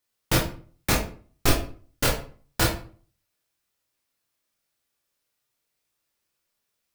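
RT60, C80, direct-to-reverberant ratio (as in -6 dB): 0.45 s, 11.5 dB, -2.5 dB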